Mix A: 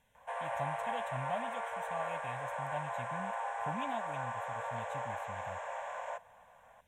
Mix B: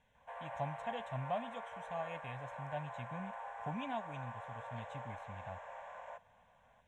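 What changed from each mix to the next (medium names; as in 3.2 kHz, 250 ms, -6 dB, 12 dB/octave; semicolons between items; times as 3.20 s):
background -8.0 dB; master: add distance through air 89 m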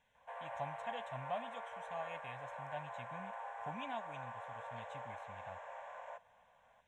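speech: add bass shelf 470 Hz -8.5 dB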